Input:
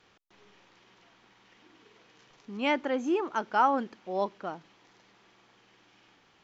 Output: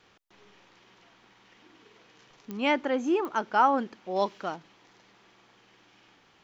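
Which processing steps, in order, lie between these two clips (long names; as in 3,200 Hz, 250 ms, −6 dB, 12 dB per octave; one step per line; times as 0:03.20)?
0:04.16–0:04.56: high-shelf EQ 2,300 Hz +9.5 dB
digital clicks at 0:02.51/0:03.25, −25 dBFS
level +2 dB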